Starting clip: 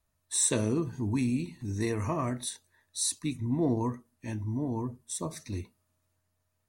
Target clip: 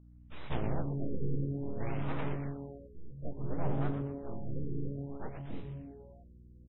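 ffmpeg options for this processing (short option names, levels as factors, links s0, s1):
-filter_complex "[0:a]acrossover=split=3600[s0][s1];[s1]acompressor=threshold=0.0178:ratio=4:attack=1:release=60[s2];[s0][s2]amix=inputs=2:normalize=0,aeval=exprs='abs(val(0))':c=same,asplit=3[s3][s4][s5];[s4]asetrate=22050,aresample=44100,atempo=2,volume=0.794[s6];[s5]asetrate=52444,aresample=44100,atempo=0.840896,volume=0.631[s7];[s3][s6][s7]amix=inputs=3:normalize=0,aeval=exprs='val(0)+0.00501*(sin(2*PI*60*n/s)+sin(2*PI*2*60*n/s)/2+sin(2*PI*3*60*n/s)/3+sin(2*PI*4*60*n/s)/4+sin(2*PI*5*60*n/s)/5)':c=same,flanger=delay=9.4:depth=3.4:regen=-83:speed=1.2:shape=triangular,asplit=8[s8][s9][s10][s11][s12][s13][s14][s15];[s9]adelay=121,afreqshift=-140,volume=0.447[s16];[s10]adelay=242,afreqshift=-280,volume=0.24[s17];[s11]adelay=363,afreqshift=-420,volume=0.13[s18];[s12]adelay=484,afreqshift=-560,volume=0.07[s19];[s13]adelay=605,afreqshift=-700,volume=0.038[s20];[s14]adelay=726,afreqshift=-840,volume=0.0204[s21];[s15]adelay=847,afreqshift=-980,volume=0.0111[s22];[s8][s16][s17][s18][s19][s20][s21][s22]amix=inputs=8:normalize=0,afftfilt=real='re*lt(b*sr/1024,490*pow(4000/490,0.5+0.5*sin(2*PI*0.58*pts/sr)))':imag='im*lt(b*sr/1024,490*pow(4000/490,0.5+0.5*sin(2*PI*0.58*pts/sr)))':win_size=1024:overlap=0.75,volume=0.631"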